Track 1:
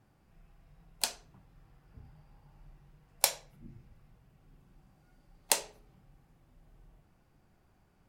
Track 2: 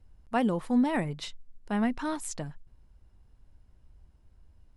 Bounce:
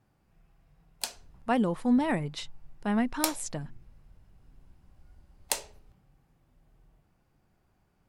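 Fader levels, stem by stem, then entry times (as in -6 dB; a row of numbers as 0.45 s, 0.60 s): -2.5 dB, +0.5 dB; 0.00 s, 1.15 s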